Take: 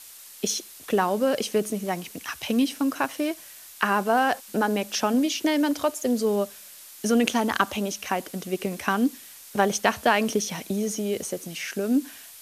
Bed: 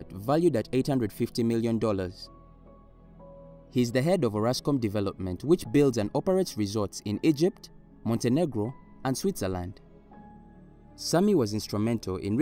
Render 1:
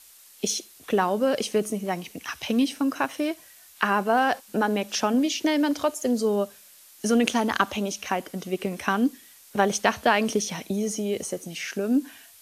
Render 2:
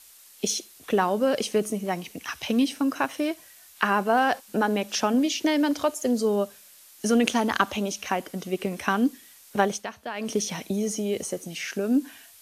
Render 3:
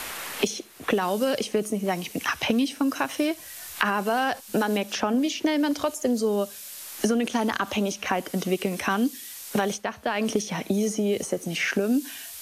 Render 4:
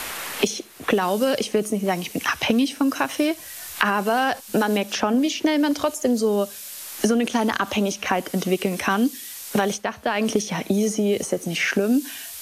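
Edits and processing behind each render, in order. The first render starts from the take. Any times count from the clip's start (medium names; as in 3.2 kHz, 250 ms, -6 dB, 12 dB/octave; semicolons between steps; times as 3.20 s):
noise print and reduce 6 dB
9.60–10.41 s: dip -14 dB, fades 0.27 s
peak limiter -13.5 dBFS, peak gain reduction 10 dB; three bands compressed up and down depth 100%
trim +3.5 dB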